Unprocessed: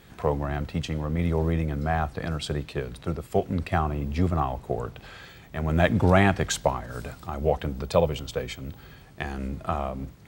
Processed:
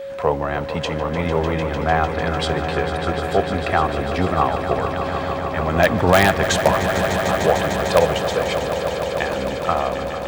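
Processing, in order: overdrive pedal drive 11 dB, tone 3400 Hz, clips at -5 dBFS; in parallel at -4 dB: wrapped overs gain 8 dB; on the sum: swelling echo 0.15 s, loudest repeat 5, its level -11.5 dB; whine 550 Hz -28 dBFS

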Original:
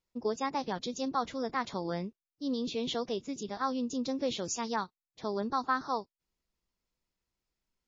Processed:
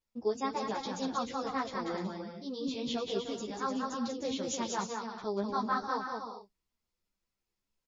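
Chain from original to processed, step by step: bouncing-ball echo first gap 0.19 s, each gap 0.6×, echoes 5; ensemble effect

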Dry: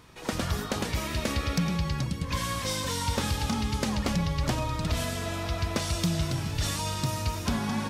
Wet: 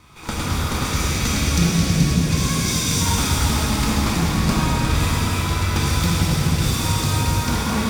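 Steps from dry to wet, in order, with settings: minimum comb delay 0.85 ms; 0.84–3.01 fifteen-band EQ 160 Hz +4 dB, 1000 Hz -7 dB, 6300 Hz +7 dB; shimmer reverb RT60 3.6 s, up +7 st, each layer -8 dB, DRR -5 dB; gain +3.5 dB

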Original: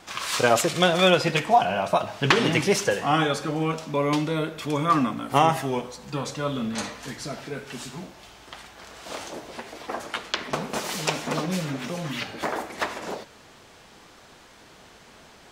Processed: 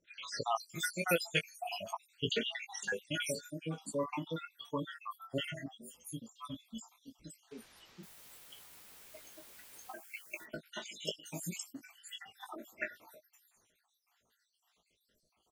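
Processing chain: random spectral dropouts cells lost 73%; pre-emphasis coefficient 0.8; spectral noise reduction 15 dB; high shelf 6600 Hz -7.5 dB; 7.51–9.92 requantised 10-bit, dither triangular; doubler 18 ms -7 dB; bands offset in time lows, highs 0.52 s, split 5800 Hz; gain +3.5 dB

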